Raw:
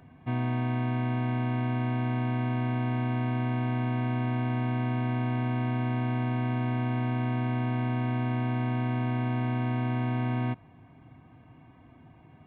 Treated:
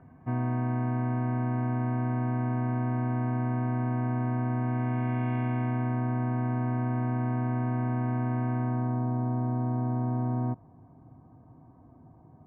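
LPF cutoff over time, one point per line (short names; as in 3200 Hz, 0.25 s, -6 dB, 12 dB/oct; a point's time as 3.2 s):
LPF 24 dB/oct
4.58 s 1700 Hz
5.35 s 2600 Hz
6.03 s 1700 Hz
8.55 s 1700 Hz
9.08 s 1100 Hz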